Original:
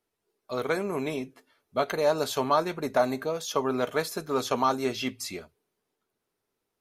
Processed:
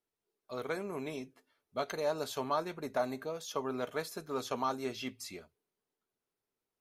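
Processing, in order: 1.13–2.00 s: dynamic bell 5.6 kHz, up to +7 dB, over -56 dBFS, Q 1.5; trim -9 dB

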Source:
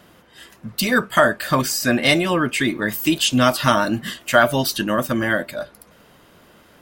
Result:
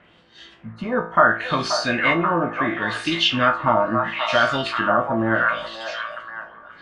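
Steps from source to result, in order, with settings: knee-point frequency compression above 3.8 kHz 1.5:1; feedback comb 56 Hz, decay 0.43 s, harmonics all, mix 80%; repeats whose band climbs or falls 531 ms, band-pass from 850 Hz, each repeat 0.7 oct, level -2 dB; LFO low-pass sine 0.73 Hz 920–4500 Hz; trim +2.5 dB

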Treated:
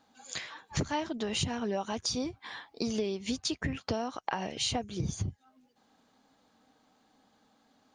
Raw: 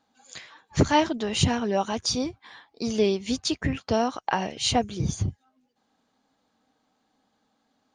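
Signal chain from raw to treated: compression 6:1, threshold -34 dBFS, peak gain reduction 18.5 dB; trim +4 dB

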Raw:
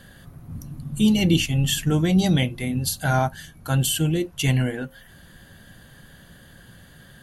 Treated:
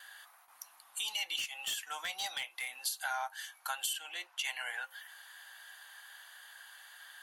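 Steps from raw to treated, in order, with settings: Chebyshev high-pass 820 Hz, order 4; gate with hold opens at -52 dBFS; 3.93–4.45 s: treble shelf 6.5 kHz -11 dB; compression 5:1, threshold -34 dBFS, peak gain reduction 12.5 dB; 1.36–2.74 s: hard clipper -31.5 dBFS, distortion -18 dB

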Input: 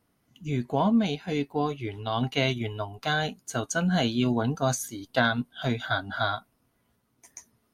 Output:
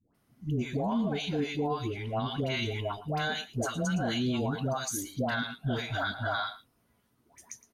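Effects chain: phase dispersion highs, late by 147 ms, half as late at 790 Hz; on a send: delay 113 ms -17 dB; on the sum: peak limiter -22.5 dBFS, peak gain reduction 10 dB

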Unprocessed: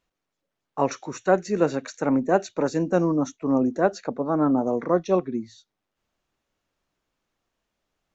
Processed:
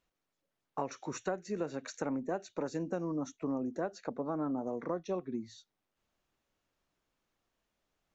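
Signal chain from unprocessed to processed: compression 6:1, threshold -29 dBFS, peak gain reduction 15.5 dB; trim -3.5 dB

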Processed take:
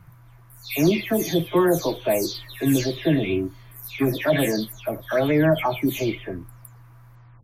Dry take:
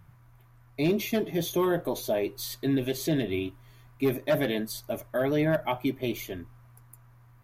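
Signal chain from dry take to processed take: delay that grows with frequency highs early, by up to 283 ms; trim +7 dB

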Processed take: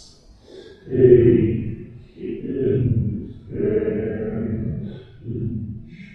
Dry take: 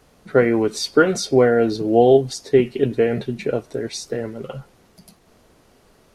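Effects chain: Doppler pass-by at 1.46 s, 27 m/s, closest 8.2 m; RIAA curve playback; Paulstretch 5.4×, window 0.05 s, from 2.31 s; trim +4 dB

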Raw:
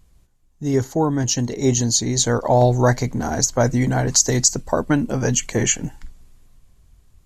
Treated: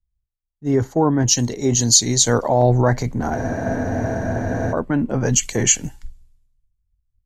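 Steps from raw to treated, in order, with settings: spectral freeze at 3.37 s, 1.35 s; loudness maximiser +11.5 dB; three bands expanded up and down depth 100%; trim -9 dB

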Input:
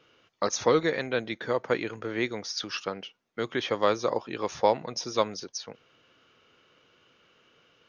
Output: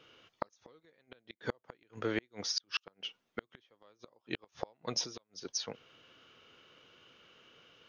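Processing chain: peaking EQ 3.2 kHz +4 dB 0.5 oct; inverted gate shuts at -19 dBFS, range -39 dB; 5.05–5.45 s: compression 3:1, threshold -48 dBFS, peak gain reduction 13.5 dB

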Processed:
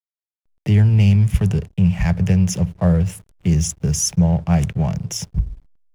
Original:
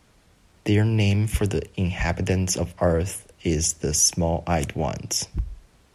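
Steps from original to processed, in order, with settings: resonant low shelf 220 Hz +7.5 dB, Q 3; hysteresis with a dead band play -33 dBFS; trim -1.5 dB

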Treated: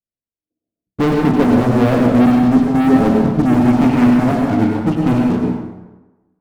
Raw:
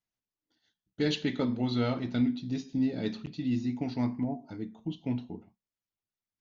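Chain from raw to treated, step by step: steep low-pass 700 Hz 96 dB/octave, from 3.66 s 2.7 kHz; waveshaping leveller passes 5; plate-style reverb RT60 1.1 s, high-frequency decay 0.65×, pre-delay 80 ms, DRR 0.5 dB; trim +6.5 dB

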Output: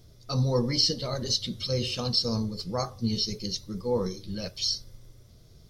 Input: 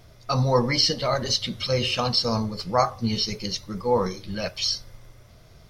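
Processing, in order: high-order bell 1.3 kHz -10 dB 2.5 oct; trim -2.5 dB

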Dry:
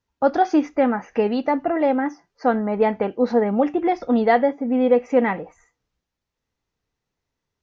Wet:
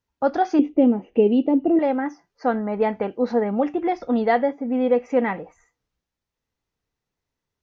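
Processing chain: 0.59–1.79 s: FFT filter 130 Hz 0 dB, 340 Hz +11 dB, 1.7 kHz -23 dB, 3 kHz +3 dB, 5.2 kHz -23 dB; trim -2.5 dB

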